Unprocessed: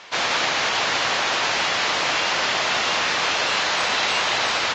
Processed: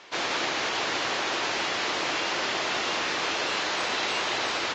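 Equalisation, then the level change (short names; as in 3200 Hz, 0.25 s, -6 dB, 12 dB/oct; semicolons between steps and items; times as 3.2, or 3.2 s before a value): bell 340 Hz +8.5 dB 0.83 oct; -7.0 dB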